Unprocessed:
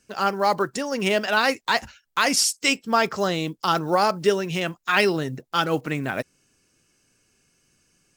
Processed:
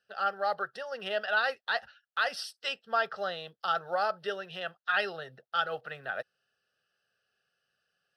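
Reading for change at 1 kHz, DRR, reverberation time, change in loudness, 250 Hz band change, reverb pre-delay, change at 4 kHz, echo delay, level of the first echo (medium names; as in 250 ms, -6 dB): -8.5 dB, no reverb, no reverb, -9.5 dB, -24.5 dB, no reverb, -10.5 dB, no echo, no echo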